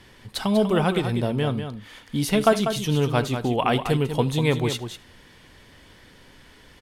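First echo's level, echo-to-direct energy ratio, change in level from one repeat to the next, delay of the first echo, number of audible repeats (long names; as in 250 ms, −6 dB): −22.0 dB, −8.5 dB, repeats not evenly spaced, 76 ms, 3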